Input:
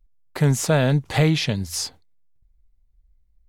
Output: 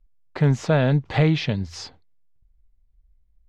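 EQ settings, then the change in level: air absorption 180 m; 0.0 dB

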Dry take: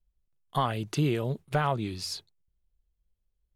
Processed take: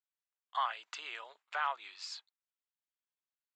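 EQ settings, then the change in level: HPF 970 Hz 24 dB/oct; synth low-pass 7500 Hz, resonance Q 12; air absorption 290 m; 0.0 dB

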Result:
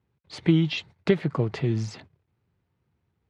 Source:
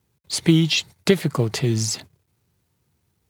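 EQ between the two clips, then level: LPF 2500 Hz 12 dB/oct; -4.0 dB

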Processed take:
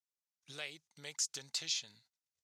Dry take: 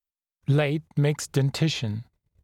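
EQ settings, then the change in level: band-pass 6000 Hz, Q 2; +1.0 dB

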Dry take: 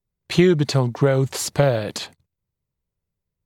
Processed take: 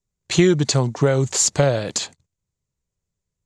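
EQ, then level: synth low-pass 7100 Hz, resonance Q 4.4; 0.0 dB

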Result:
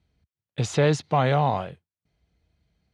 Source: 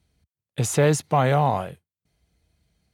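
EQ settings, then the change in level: dynamic EQ 4100 Hz, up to +7 dB, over -47 dBFS, Q 1.2; air absorption 110 m; -1.5 dB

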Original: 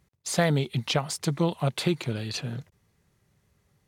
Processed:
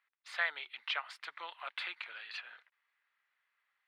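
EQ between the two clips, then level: ladder high-pass 1200 Hz, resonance 25%; air absorption 450 m; +7.0 dB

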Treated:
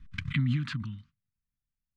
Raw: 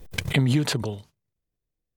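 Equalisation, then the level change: elliptic band-stop 250–1200 Hz, stop band 40 dB; LPF 2500 Hz 12 dB/oct; -4.5 dB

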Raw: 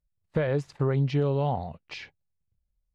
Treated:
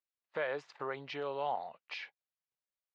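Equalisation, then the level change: HPF 800 Hz 12 dB/oct; air absorption 150 m; 0.0 dB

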